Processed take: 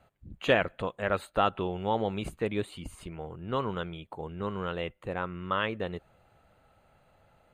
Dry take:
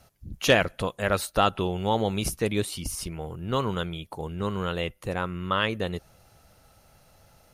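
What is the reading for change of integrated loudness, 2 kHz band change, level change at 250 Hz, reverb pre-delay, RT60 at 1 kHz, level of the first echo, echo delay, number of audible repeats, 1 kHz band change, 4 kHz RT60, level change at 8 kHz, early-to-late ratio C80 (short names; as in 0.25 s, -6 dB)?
-4.5 dB, -4.5 dB, -5.0 dB, none, none, none, none, none, -3.0 dB, none, -18.5 dB, none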